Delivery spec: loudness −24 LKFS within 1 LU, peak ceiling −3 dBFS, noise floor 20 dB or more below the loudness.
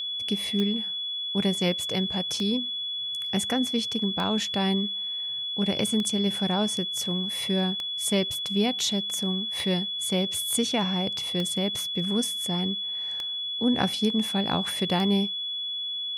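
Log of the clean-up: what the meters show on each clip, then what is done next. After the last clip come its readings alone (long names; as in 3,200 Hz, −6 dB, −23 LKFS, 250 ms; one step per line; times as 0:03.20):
number of clicks 9; interfering tone 3,400 Hz; level of the tone −29 dBFS; integrated loudness −26.0 LKFS; sample peak −11.0 dBFS; target loudness −24.0 LKFS
→ click removal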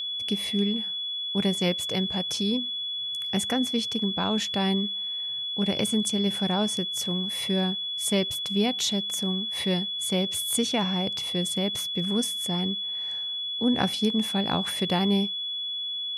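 number of clicks 0; interfering tone 3,400 Hz; level of the tone −29 dBFS
→ notch filter 3,400 Hz, Q 30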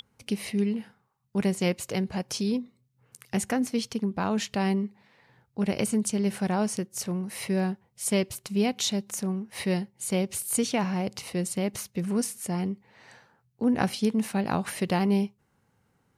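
interfering tone none found; integrated loudness −28.5 LKFS; sample peak −11.0 dBFS; target loudness −24.0 LKFS
→ level +4.5 dB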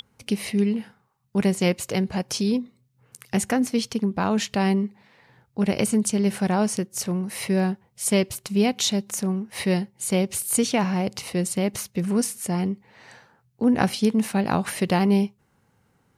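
integrated loudness −24.0 LKFS; sample peak −6.5 dBFS; background noise floor −66 dBFS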